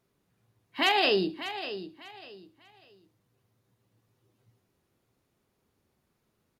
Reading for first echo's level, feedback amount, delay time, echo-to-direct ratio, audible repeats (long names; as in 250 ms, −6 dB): −12.0 dB, 27%, 596 ms, −11.5 dB, 3